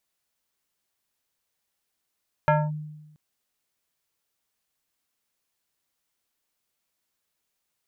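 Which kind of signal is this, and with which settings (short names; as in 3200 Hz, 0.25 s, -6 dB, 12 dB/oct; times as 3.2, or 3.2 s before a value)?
FM tone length 0.68 s, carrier 152 Hz, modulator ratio 4.97, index 1.7, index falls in 0.23 s linear, decay 1.07 s, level -14.5 dB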